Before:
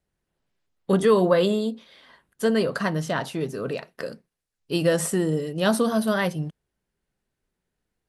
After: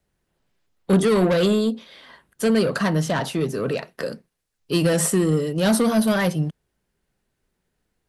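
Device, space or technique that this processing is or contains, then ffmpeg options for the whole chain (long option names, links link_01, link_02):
one-band saturation: -filter_complex "[0:a]acrossover=split=240|4000[link_01][link_02][link_03];[link_02]asoftclip=type=tanh:threshold=-24.5dB[link_04];[link_01][link_04][link_03]amix=inputs=3:normalize=0,volume=6dB"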